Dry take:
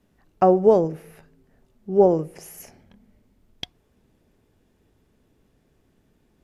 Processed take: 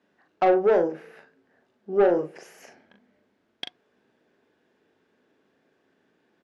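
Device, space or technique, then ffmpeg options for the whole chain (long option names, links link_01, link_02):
intercom: -filter_complex "[0:a]highpass=310,lowpass=4400,equalizer=frequency=1600:width_type=o:width=0.28:gain=7.5,asoftclip=type=tanh:threshold=-14dB,asplit=2[link_01][link_02];[link_02]adelay=40,volume=-6dB[link_03];[link_01][link_03]amix=inputs=2:normalize=0"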